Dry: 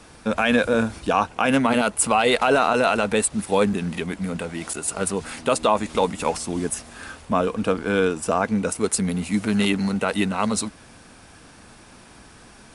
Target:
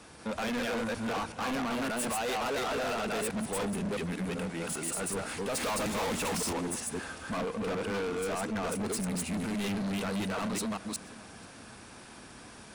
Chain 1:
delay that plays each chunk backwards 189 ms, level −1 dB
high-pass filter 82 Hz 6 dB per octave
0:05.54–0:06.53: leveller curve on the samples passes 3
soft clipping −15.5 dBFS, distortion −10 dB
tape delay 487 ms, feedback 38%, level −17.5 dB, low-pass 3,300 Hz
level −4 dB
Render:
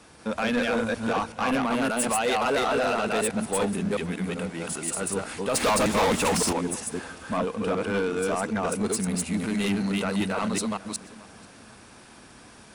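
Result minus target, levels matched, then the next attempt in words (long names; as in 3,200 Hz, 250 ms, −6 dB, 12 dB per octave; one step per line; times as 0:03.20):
soft clipping: distortion −6 dB
delay that plays each chunk backwards 189 ms, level −1 dB
high-pass filter 82 Hz 6 dB per octave
0:05.54–0:06.53: leveller curve on the samples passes 3
soft clipping −26.5 dBFS, distortion −3 dB
tape delay 487 ms, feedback 38%, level −17.5 dB, low-pass 3,300 Hz
level −4 dB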